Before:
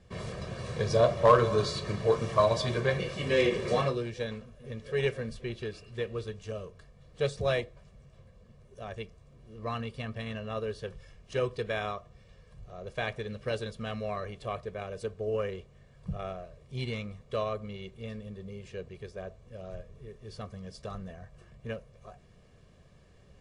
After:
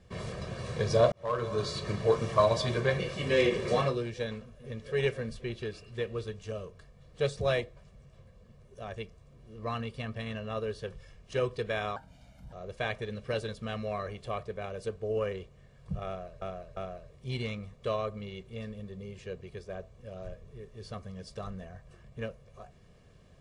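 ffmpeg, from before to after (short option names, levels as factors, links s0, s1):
-filter_complex "[0:a]asplit=6[s0][s1][s2][s3][s4][s5];[s0]atrim=end=1.12,asetpts=PTS-STARTPTS,afade=t=out:st=1.116:d=0.004:c=hsin[s6];[s1]atrim=start=1.12:end=11.964,asetpts=PTS-STARTPTS,afade=t=in:d=0.76[s7];[s2]atrim=start=11.96:end=12.7,asetpts=PTS-STARTPTS,asetrate=57771,aresample=44100,atrim=end_sample=24911,asetpts=PTS-STARTPTS[s8];[s3]atrim=start=12.696:end=16.592[s9];[s4]atrim=start=16.238:end=16.592[s10];[s5]atrim=start=16.238[s11];[s6][s7]concat=n=2:v=0:a=1[s12];[s12][s8]acrossfade=d=0.004:c1=hsin:c2=hsin[s13];[s13][s9]acrossfade=d=0.004:c1=hsin:c2=hsin[s14];[s14][s10]acrossfade=d=0.004:c1=hsin:c2=hsin[s15];[s15][s11]acrossfade=d=0.004:c1=hsin:c2=hsin"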